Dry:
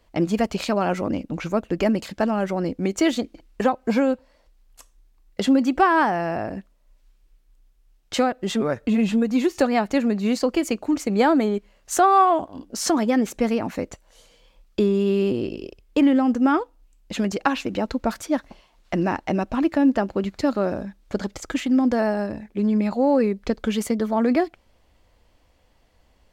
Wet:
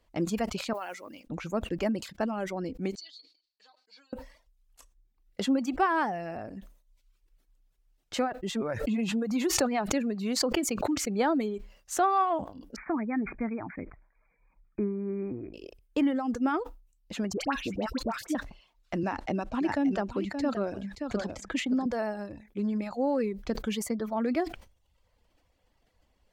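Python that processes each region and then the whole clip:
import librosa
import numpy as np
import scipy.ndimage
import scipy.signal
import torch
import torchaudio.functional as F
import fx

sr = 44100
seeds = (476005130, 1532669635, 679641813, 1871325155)

y = fx.chain(x, sr, fx.block_float(bits=7),
    fx.highpass(hz=1300.0, slope=6), at=(0.73, 1.27))
y = fx.chain(y, sr, fx.halfwave_gain(db=-3.0),
    fx.bandpass_q(hz=4400.0, q=10.0),
    fx.comb(ms=6.5, depth=0.76), at=(2.95, 4.13))
y = fx.chain(y, sr, fx.highpass(hz=49.0, slope=6),
    fx.pre_swell(db_per_s=47.0), at=(8.72, 11.15))
y = fx.chain(y, sr, fx.brickwall_lowpass(high_hz=2500.0),
    fx.peak_eq(hz=520.0, db=-10.5, octaves=0.47), at=(12.76, 15.54))
y = fx.chain(y, sr, fx.dispersion(late='highs', ms=79.0, hz=1200.0),
    fx.band_squash(depth_pct=70), at=(17.33, 18.35))
y = fx.chain(y, sr, fx.lowpass(hz=10000.0, slope=12),
    fx.echo_single(ms=575, db=-9.0),
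    fx.band_squash(depth_pct=40), at=(19.03, 21.86))
y = fx.dereverb_blind(y, sr, rt60_s=0.74)
y = fx.sustainer(y, sr, db_per_s=120.0)
y = F.gain(torch.from_numpy(y), -8.0).numpy()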